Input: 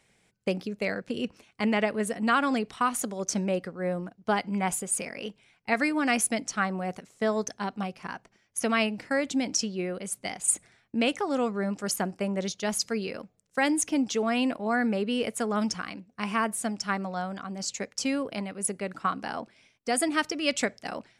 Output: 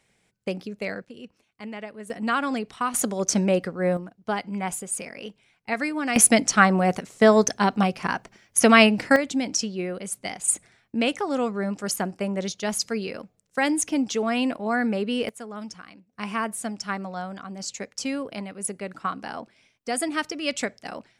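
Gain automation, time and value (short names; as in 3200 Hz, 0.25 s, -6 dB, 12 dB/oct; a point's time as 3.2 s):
-1 dB
from 1.05 s -11 dB
from 2.1 s -0.5 dB
from 2.94 s +6.5 dB
from 3.97 s -1 dB
from 6.16 s +11 dB
from 9.16 s +2 dB
from 15.29 s -9 dB
from 16.13 s -0.5 dB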